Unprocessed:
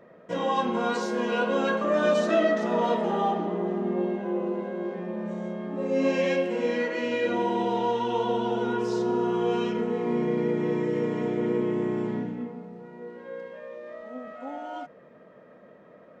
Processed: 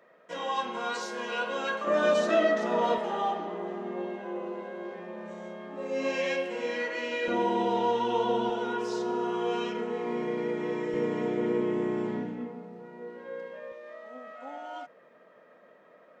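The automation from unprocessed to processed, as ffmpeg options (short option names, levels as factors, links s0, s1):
-af "asetnsamples=n=441:p=0,asendcmd='1.87 highpass f 350;2.98 highpass f 800;7.28 highpass f 200;8.5 highpass f 550;10.94 highpass f 240;13.72 highpass f 800',highpass=f=1200:p=1"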